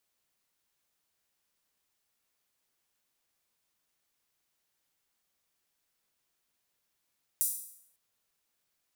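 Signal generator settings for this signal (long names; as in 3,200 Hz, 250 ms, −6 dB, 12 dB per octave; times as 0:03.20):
open synth hi-hat length 0.55 s, high-pass 9,000 Hz, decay 0.68 s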